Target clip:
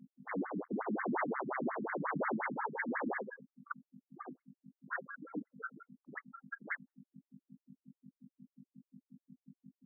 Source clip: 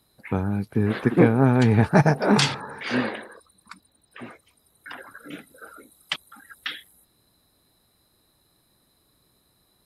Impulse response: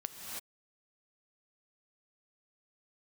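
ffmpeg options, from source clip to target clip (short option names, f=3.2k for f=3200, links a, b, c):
-filter_complex "[0:a]afftfilt=real='re':imag='-im':win_size=4096:overlap=0.75,agate=range=-21dB:threshold=-55dB:ratio=16:detection=peak,afftdn=nr=30:nf=-39,asplit=2[a][b];[b]acompressor=threshold=-32dB:ratio=8,volume=0.5dB[c];[a][c]amix=inputs=2:normalize=0,aeval=exprs='0.075*(abs(mod(val(0)/0.075+3,4)-2)-1)':c=same,aeval=exprs='val(0)+0.00398*(sin(2*PI*50*n/s)+sin(2*PI*2*50*n/s)/2+sin(2*PI*3*50*n/s)/3+sin(2*PI*4*50*n/s)/4+sin(2*PI*5*50*n/s)/5)':c=same,aresample=8000,asoftclip=type=hard:threshold=-34dB,aresample=44100,afftfilt=real='re*between(b*sr/1024,210*pow(1600/210,0.5+0.5*sin(2*PI*5.6*pts/sr))/1.41,210*pow(1600/210,0.5+0.5*sin(2*PI*5.6*pts/sr))*1.41)':imag='im*between(b*sr/1024,210*pow(1600/210,0.5+0.5*sin(2*PI*5.6*pts/sr))/1.41,210*pow(1600/210,0.5+0.5*sin(2*PI*5.6*pts/sr))*1.41)':win_size=1024:overlap=0.75,volume=6.5dB"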